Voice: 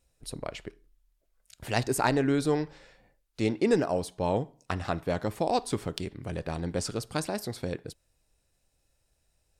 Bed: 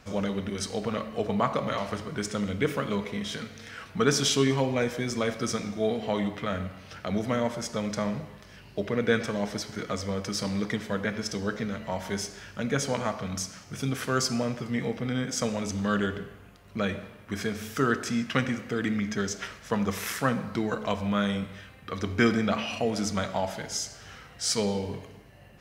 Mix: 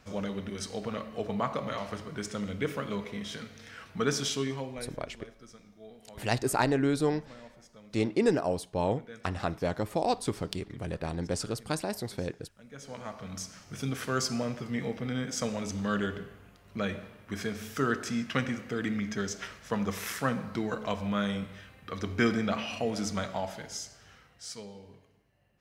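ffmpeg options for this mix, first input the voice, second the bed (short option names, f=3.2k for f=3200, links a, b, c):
-filter_complex "[0:a]adelay=4550,volume=-1dB[a];[1:a]volume=14.5dB,afade=t=out:st=4.07:d=0.97:silence=0.125893,afade=t=in:st=12.7:d=1.02:silence=0.105925,afade=t=out:st=23.15:d=1.53:silence=0.177828[b];[a][b]amix=inputs=2:normalize=0"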